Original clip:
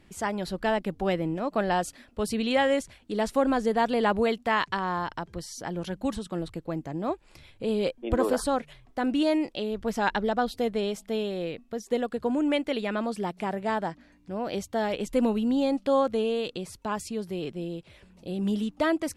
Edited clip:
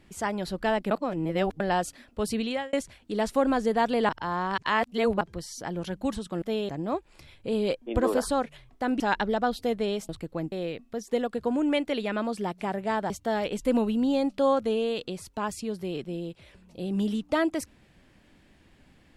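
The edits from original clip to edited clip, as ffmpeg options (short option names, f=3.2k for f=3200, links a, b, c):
-filter_complex "[0:a]asplit=12[a][b][c][d][e][f][g][h][i][j][k][l];[a]atrim=end=0.912[m];[b]atrim=start=0.908:end=1.602,asetpts=PTS-STARTPTS,areverse[n];[c]atrim=start=1.598:end=2.73,asetpts=PTS-STARTPTS,afade=t=out:st=0.772:d=0.36[o];[d]atrim=start=2.73:end=4.092,asetpts=PTS-STARTPTS,afade=t=in:d=0.004:c=hsin[p];[e]atrim=start=4.088:end=5.212,asetpts=PTS-STARTPTS,areverse[q];[f]atrim=start=5.208:end=6.422[r];[g]atrim=start=11.038:end=11.312[s];[h]atrim=start=6.848:end=9.162[t];[i]atrim=start=9.948:end=11.042[u];[j]atrim=start=6.418:end=6.852[v];[k]atrim=start=11.308:end=13.892[w];[l]atrim=start=14.578[x];[m][n]acrossfade=d=0.004:c1=hsin:c2=hsin[y];[o][p]concat=n=2:v=0:a=1[z];[y][z]acrossfade=d=0.004:c1=hsin:c2=hsin[aa];[aa][q]acrossfade=d=0.004:c1=hsin:c2=hsin[ab];[ab][r]acrossfade=d=0.004:c1=hsin:c2=hsin[ac];[ac][s]acrossfade=d=0.004:c1=hsin:c2=hsin[ad];[ad][t]acrossfade=d=0.004:c1=hsin:c2=hsin[ae];[ae][u]acrossfade=d=0.004:c1=hsin:c2=hsin[af];[af][v]acrossfade=d=0.004:c1=hsin:c2=hsin[ag];[ag][w]acrossfade=d=0.004:c1=hsin:c2=hsin[ah];[ah][x]acrossfade=d=0.004:c1=hsin:c2=hsin"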